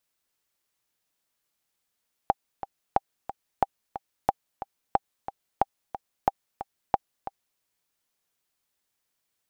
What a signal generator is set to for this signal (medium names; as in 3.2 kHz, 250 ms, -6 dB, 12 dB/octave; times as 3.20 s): metronome 181 bpm, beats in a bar 2, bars 8, 792 Hz, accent 13 dB -6.5 dBFS